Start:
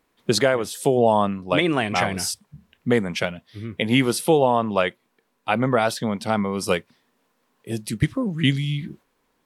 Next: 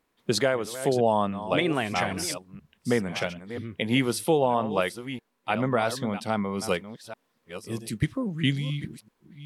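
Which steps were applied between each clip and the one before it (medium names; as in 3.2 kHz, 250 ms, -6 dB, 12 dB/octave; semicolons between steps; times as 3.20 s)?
chunks repeated in reverse 649 ms, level -12 dB; trim -5 dB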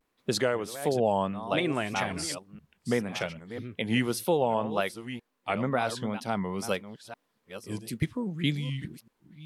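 wow and flutter 120 cents; trim -3 dB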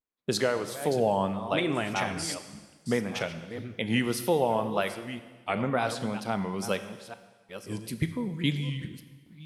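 gate with hold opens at -50 dBFS; on a send at -10 dB: reverberation RT60 1.4 s, pre-delay 13 ms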